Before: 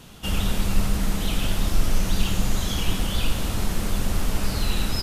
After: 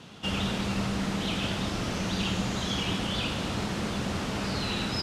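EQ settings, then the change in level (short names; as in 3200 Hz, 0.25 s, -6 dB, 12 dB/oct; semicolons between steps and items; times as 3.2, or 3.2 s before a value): BPF 120–5300 Hz; 0.0 dB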